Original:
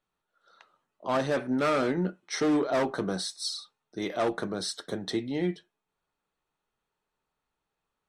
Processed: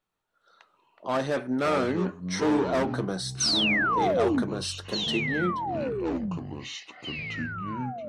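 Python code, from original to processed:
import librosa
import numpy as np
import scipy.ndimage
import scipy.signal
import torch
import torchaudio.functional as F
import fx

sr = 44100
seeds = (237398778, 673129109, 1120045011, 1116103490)

y = fx.spec_paint(x, sr, seeds[0], shape='fall', start_s=3.4, length_s=1.03, low_hz=220.0, high_hz=6400.0, level_db=-25.0)
y = fx.echo_pitch(y, sr, ms=119, semitones=-6, count=3, db_per_echo=-6.0)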